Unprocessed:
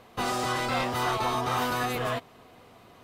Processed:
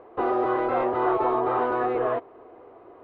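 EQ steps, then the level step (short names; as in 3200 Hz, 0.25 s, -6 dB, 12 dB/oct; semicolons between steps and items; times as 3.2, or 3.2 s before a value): LPF 1200 Hz 12 dB/oct; air absorption 200 m; resonant low shelf 260 Hz -10 dB, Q 3; +5.0 dB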